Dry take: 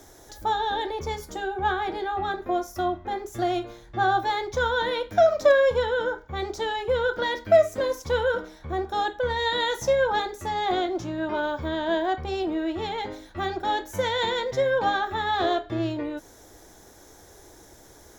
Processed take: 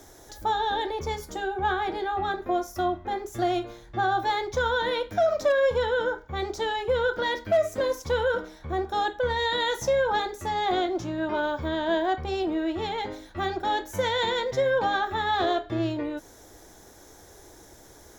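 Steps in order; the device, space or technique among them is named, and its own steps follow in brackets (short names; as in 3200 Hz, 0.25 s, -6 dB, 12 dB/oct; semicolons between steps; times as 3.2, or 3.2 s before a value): clipper into limiter (hard clip -11 dBFS, distortion -30 dB; limiter -16 dBFS, peak gain reduction 5 dB)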